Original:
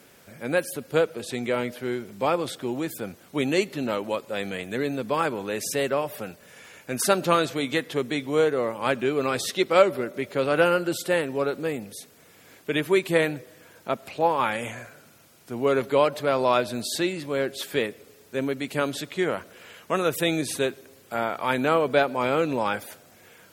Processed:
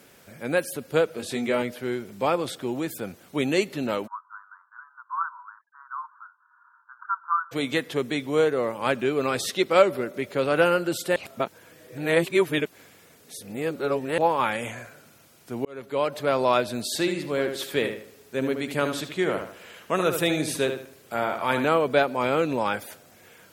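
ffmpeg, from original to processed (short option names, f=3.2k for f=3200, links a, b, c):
-filter_complex "[0:a]asettb=1/sr,asplit=3[a][b][c];[a]atrim=end=1.124[d];[b]atrim=start=1.12:end=1.62,asetpts=PTS-STARTPTS,afade=t=in:d=0.004:c=qsin,afade=t=out:st=0.496:d=0.004:c=qsin,asplit=2[e][f];[f]adelay=21,volume=-4.5dB[g];[e][g]amix=inputs=2:normalize=0,atrim=end_sample=22050[h];[c]atrim=start=1.616[i];[d][h]acrossfade=d=0.004:c1=hsin:c2=qsin[j];[j][i]acrossfade=d=0.004:c1=qsin:c2=hsin,asplit=3[k][l][m];[k]afade=t=out:st=4.06:d=0.02[n];[l]asuperpass=centerf=1200:order=12:qfactor=2.1,afade=t=in:st=4.06:d=0.02,afade=t=out:st=7.51:d=0.02[o];[m]afade=t=in:st=7.51:d=0.02[p];[n][o][p]amix=inputs=3:normalize=0,asettb=1/sr,asplit=3[q][r][s];[q]atrim=end=16.904[t];[r]atrim=start=16.9:end=21.65,asetpts=PTS-STARTPTS,afade=t=in:d=0.004:c=qsin,afade=t=out:st=4.746:d=0.004:c=qsin,asplit=2[u][v];[v]adelay=76,lowpass=f=3.9k:p=1,volume=-7dB,asplit=2[w][x];[x]adelay=76,lowpass=f=3.9k:p=1,volume=0.36,asplit=2[y][z];[z]adelay=76,lowpass=f=3.9k:p=1,volume=0.36,asplit=2[aa][ab];[ab]adelay=76,lowpass=f=3.9k:p=1,volume=0.36[ac];[u][w][y][aa][ac]amix=inputs=5:normalize=0,atrim=end_sample=209475[ad];[s]atrim=start=21.646[ae];[t][ad]acrossfade=d=0.004:c1=hsin:c2=qsin[af];[af][ae]acrossfade=d=0.004:c1=qsin:c2=hsin,asplit=4[ag][ah][ai][aj];[ag]atrim=end=11.162[ak];[ah]atrim=start=11.158:end=14.182,asetpts=PTS-STARTPTS,areverse[al];[ai]atrim=start=14.178:end=15.65,asetpts=PTS-STARTPTS,afade=t=out:st=1.468:d=0.004:c=hsin[am];[aj]atrim=start=15.65,asetpts=PTS-STARTPTS,afade=t=in:d=0.63[an];[ak][al]acrossfade=d=0.004:c1=hsin:c2=hsin[ao];[am][an]concat=n=2:v=0:a=1[ap];[ao][ap]acrossfade=d=0.004:c1=hsin:c2=hsin"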